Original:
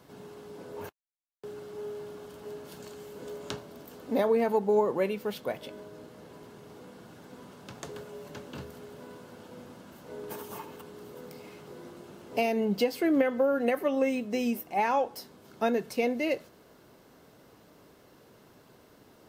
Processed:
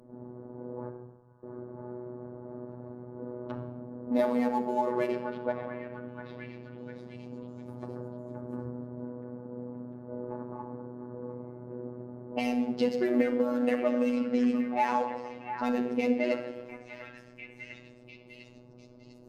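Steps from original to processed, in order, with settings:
adaptive Wiener filter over 15 samples
low-pass that shuts in the quiet parts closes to 520 Hz, open at −22.5 dBFS
on a send: echo through a band-pass that steps 699 ms, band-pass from 1,300 Hz, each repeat 0.7 octaves, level −8.5 dB
on the sum: rectangular room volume 3,700 cubic metres, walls furnished, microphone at 2.5 metres
in parallel at +3 dB: downward compressor, threshold −37 dBFS, peak gain reduction 19.5 dB
on the sum: high-shelf EQ 9,400 Hz −11 dB
phases set to zero 123 Hz
parametric band 12,000 Hz +6.5 dB 1.3 octaves
level −2.5 dB

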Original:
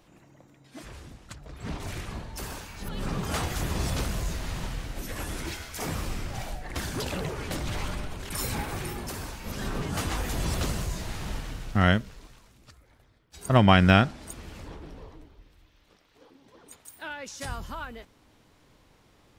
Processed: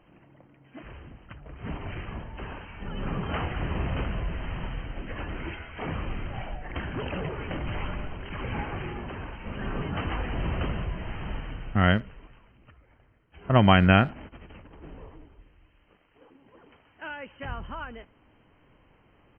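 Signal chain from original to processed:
0:14.12–0:14.84: compressor whose output falls as the input rises −45 dBFS, ratio −0.5
linear-phase brick-wall low-pass 3,200 Hz
far-end echo of a speakerphone 80 ms, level −26 dB

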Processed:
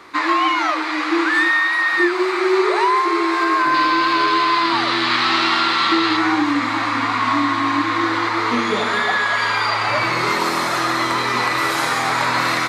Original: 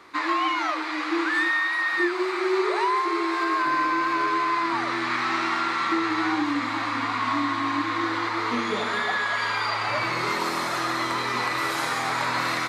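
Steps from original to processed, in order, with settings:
0:03.74–0:06.17: flat-topped bell 3,700 Hz +8.5 dB 1 octave
level +7 dB

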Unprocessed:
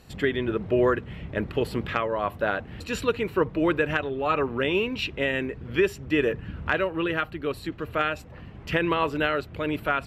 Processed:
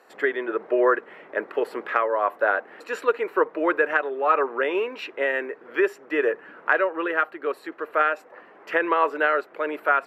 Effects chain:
high-pass filter 390 Hz 24 dB per octave
high shelf with overshoot 2,300 Hz −10 dB, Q 1.5
level +3.5 dB

